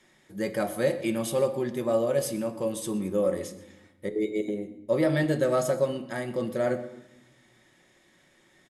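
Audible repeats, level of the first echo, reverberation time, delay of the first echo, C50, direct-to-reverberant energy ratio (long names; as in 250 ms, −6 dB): 1, −20.0 dB, 1.0 s, 123 ms, 12.5 dB, 7.0 dB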